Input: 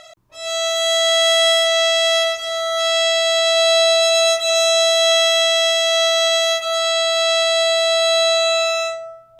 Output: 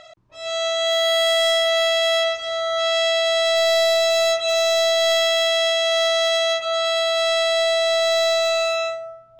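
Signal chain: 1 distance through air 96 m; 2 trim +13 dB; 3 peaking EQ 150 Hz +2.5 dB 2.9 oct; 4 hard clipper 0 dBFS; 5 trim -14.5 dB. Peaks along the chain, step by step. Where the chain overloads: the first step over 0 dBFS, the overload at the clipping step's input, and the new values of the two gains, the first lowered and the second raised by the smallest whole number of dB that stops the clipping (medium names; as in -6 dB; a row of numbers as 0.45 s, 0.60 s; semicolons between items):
-8.0 dBFS, +5.0 dBFS, +5.5 dBFS, 0.0 dBFS, -14.5 dBFS; step 2, 5.5 dB; step 2 +7 dB, step 5 -8.5 dB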